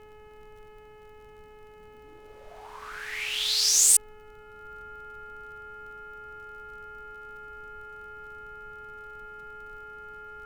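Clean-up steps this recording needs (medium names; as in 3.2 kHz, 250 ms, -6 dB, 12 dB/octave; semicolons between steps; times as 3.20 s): de-click; de-hum 425.8 Hz, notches 7; band-stop 1.4 kHz, Q 30; noise reduction 28 dB, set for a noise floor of -50 dBFS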